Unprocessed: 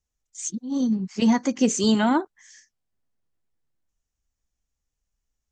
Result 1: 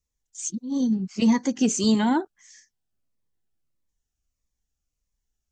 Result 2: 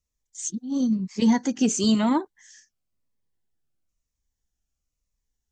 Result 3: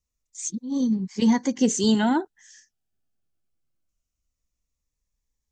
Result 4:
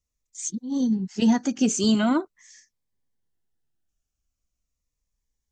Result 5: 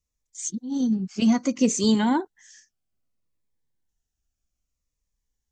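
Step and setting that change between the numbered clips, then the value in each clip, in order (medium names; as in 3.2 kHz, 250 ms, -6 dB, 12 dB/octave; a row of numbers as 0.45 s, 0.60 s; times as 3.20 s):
Shepard-style phaser, rate: 1.6 Hz, 1 Hz, 0.22 Hz, 0.42 Hz, 0.62 Hz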